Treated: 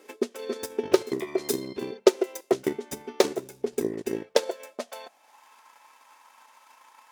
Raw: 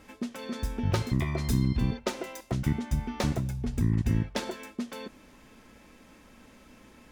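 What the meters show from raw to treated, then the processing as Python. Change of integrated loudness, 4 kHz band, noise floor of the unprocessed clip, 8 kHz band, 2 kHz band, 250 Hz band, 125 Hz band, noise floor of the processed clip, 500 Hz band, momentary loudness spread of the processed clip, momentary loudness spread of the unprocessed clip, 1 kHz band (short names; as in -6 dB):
+2.5 dB, +4.5 dB, -56 dBFS, +6.0 dB, +1.5 dB, -0.5 dB, -20.5 dB, -61 dBFS, +13.0 dB, 14 LU, 11 LU, +3.0 dB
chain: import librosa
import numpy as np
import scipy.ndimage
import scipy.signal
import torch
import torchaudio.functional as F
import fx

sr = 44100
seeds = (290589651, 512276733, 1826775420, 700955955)

y = fx.high_shelf(x, sr, hz=3900.0, db=7.5)
y = fx.hum_notches(y, sr, base_hz=50, count=4)
y = fx.transient(y, sr, attack_db=10, sustain_db=-5)
y = fx.filter_sweep_highpass(y, sr, from_hz=400.0, to_hz=930.0, start_s=4.12, end_s=5.5, q=6.4)
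y = y * 10.0 ** (-4.5 / 20.0)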